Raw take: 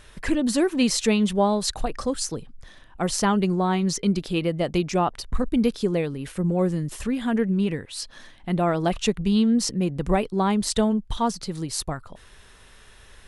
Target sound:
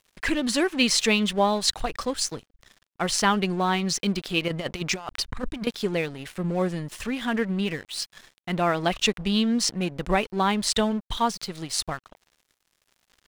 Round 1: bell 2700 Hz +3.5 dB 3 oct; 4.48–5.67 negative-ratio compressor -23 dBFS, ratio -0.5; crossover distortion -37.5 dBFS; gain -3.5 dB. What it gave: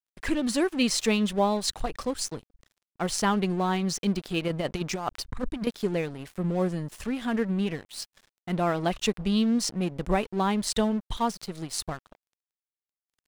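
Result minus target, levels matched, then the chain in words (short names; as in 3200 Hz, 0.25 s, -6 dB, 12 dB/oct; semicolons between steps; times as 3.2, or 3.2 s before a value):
2000 Hz band -4.0 dB
bell 2700 Hz +10.5 dB 3 oct; 4.48–5.67 negative-ratio compressor -23 dBFS, ratio -0.5; crossover distortion -37.5 dBFS; gain -3.5 dB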